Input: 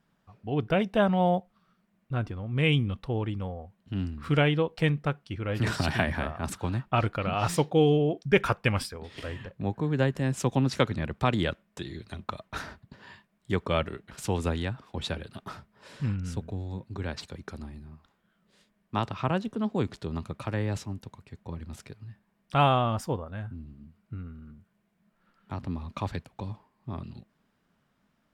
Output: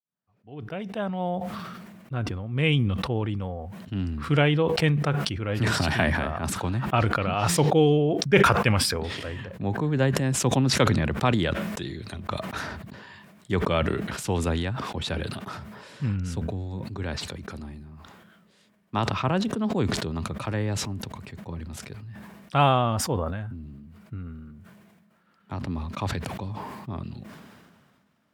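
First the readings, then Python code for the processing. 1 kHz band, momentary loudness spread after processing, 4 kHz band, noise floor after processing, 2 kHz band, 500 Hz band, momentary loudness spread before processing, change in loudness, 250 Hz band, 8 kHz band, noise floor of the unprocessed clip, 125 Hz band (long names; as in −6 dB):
+3.0 dB, 18 LU, +5.5 dB, −63 dBFS, +4.0 dB, +2.5 dB, 18 LU, +3.5 dB, +3.0 dB, +10.5 dB, −73 dBFS, +3.5 dB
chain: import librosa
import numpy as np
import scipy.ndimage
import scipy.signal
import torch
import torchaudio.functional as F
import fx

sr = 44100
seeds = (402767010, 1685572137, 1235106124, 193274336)

y = fx.fade_in_head(x, sr, length_s=2.88)
y = scipy.signal.sosfilt(scipy.signal.butter(4, 70.0, 'highpass', fs=sr, output='sos'), y)
y = fx.sustainer(y, sr, db_per_s=31.0)
y = F.gain(torch.from_numpy(y), 2.0).numpy()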